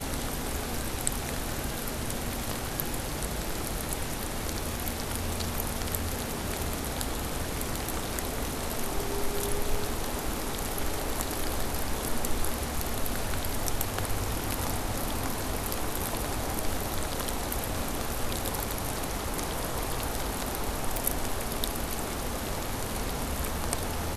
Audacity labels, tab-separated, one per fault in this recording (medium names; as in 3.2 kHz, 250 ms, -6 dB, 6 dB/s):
20.970000	20.970000	pop